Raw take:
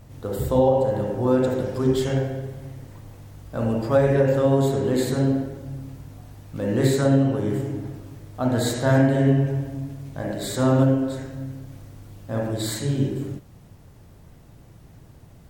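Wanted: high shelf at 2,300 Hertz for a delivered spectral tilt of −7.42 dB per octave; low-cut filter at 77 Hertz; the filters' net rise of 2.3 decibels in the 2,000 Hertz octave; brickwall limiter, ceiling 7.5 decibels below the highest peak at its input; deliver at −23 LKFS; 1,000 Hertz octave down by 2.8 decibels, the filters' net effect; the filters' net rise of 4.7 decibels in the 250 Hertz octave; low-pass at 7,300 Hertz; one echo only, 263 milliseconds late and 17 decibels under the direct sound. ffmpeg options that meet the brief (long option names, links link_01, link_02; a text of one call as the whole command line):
ffmpeg -i in.wav -af "highpass=77,lowpass=7300,equalizer=frequency=250:width_type=o:gain=5.5,equalizer=frequency=1000:width_type=o:gain=-5,equalizer=frequency=2000:width_type=o:gain=8,highshelf=frequency=2300:gain=-6.5,alimiter=limit=-12.5dB:level=0:latency=1,aecho=1:1:263:0.141" out.wav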